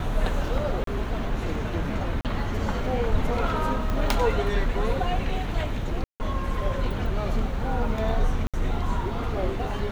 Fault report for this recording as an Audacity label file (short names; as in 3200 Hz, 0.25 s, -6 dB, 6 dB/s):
0.840000	0.870000	gap 33 ms
2.210000	2.250000	gap 38 ms
3.900000	3.900000	pop -16 dBFS
6.040000	6.200000	gap 0.159 s
8.470000	8.540000	gap 66 ms